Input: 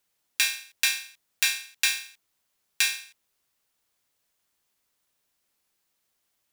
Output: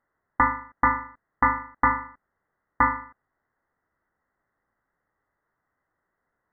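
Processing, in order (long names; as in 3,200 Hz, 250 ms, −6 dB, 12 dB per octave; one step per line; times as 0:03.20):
Chebyshev high-pass with heavy ripple 1,600 Hz, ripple 3 dB
voice inversion scrambler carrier 3,600 Hz
level +8.5 dB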